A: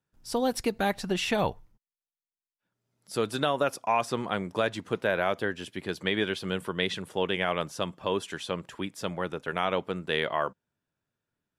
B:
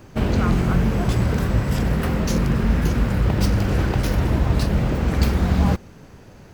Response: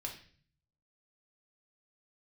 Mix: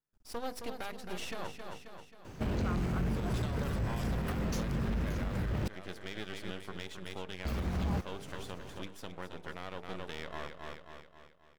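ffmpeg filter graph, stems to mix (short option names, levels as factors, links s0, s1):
-filter_complex "[0:a]bandreject=f=50:t=h:w=6,bandreject=f=100:t=h:w=6,bandreject=f=150:t=h:w=6,bandreject=f=200:t=h:w=6,bandreject=f=250:t=h:w=6,bandreject=f=300:t=h:w=6,bandreject=f=350:t=h:w=6,bandreject=f=400:t=h:w=6,bandreject=f=450:t=h:w=6,bandreject=f=500:t=h:w=6,aeval=exprs='max(val(0),0)':c=same,volume=0.501,asplit=2[s0][s1];[s1]volume=0.398[s2];[1:a]asoftclip=type=tanh:threshold=0.211,adelay=2250,volume=0.631,asplit=3[s3][s4][s5];[s3]atrim=end=5.68,asetpts=PTS-STARTPTS,afade=t=out:st=5.676:d=0.004:c=hsin[s6];[s4]atrim=start=5.68:end=7.45,asetpts=PTS-STARTPTS,volume=0[s7];[s5]atrim=start=7.45,asetpts=PTS-STARTPTS,afade=t=in:d=0.004:c=hsin[s8];[s6][s7][s8]concat=n=3:v=0:a=1[s9];[s2]aecho=0:1:267|534|801|1068|1335|1602|1869:1|0.48|0.23|0.111|0.0531|0.0255|0.0122[s10];[s0][s9][s10]amix=inputs=3:normalize=0,alimiter=level_in=1.26:limit=0.0631:level=0:latency=1:release=271,volume=0.794"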